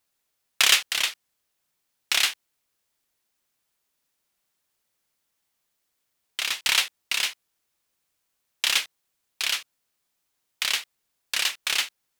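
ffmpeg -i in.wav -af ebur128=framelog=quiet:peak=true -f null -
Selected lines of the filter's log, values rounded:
Integrated loudness:
  I:         -23.7 LUFS
  Threshold: -34.3 LUFS
Loudness range:
  LRA:         6.0 LU
  Threshold: -48.4 LUFS
  LRA low:   -31.0 LUFS
  LRA high:  -25.0 LUFS
True peak:
  Peak:       -3.0 dBFS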